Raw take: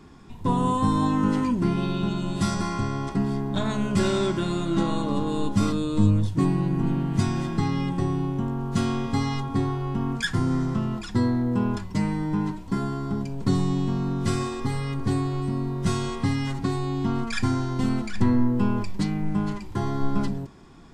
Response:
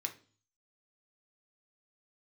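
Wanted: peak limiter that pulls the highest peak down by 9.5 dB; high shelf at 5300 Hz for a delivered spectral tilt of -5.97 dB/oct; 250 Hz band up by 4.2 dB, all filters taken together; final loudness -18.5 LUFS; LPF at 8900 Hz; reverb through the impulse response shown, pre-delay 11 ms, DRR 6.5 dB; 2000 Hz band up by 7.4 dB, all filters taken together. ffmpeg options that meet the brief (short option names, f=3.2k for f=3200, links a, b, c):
-filter_complex "[0:a]lowpass=8.9k,equalizer=f=250:t=o:g=5,equalizer=f=2k:t=o:g=8.5,highshelf=f=5.3k:g=5.5,alimiter=limit=-15dB:level=0:latency=1,asplit=2[a][b];[1:a]atrim=start_sample=2205,adelay=11[c];[b][c]afir=irnorm=-1:irlink=0,volume=-6.5dB[d];[a][d]amix=inputs=2:normalize=0,volume=5.5dB"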